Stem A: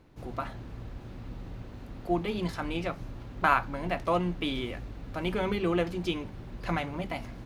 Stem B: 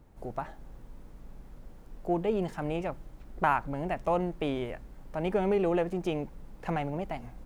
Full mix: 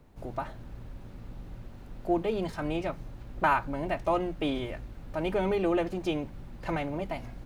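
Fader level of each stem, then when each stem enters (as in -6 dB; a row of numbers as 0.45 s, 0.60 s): -5.5 dB, -0.5 dB; 0.00 s, 0.00 s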